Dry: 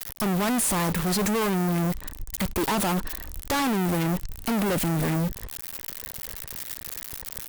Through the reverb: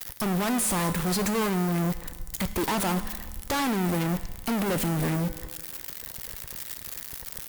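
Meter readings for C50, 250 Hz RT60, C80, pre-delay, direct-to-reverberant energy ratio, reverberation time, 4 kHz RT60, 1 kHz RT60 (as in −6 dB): 13.0 dB, 1.5 s, 14.0 dB, 4 ms, 10.5 dB, 1.5 s, 1.5 s, 1.5 s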